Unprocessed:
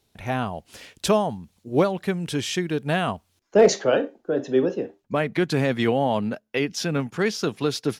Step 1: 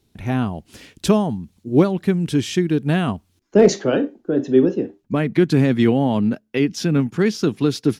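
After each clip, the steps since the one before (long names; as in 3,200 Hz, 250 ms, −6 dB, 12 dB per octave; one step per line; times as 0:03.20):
low shelf with overshoot 420 Hz +7 dB, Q 1.5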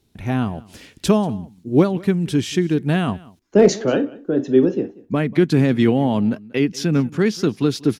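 single-tap delay 187 ms −22 dB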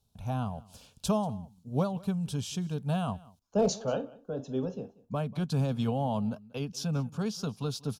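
phaser with its sweep stopped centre 810 Hz, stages 4
level −7 dB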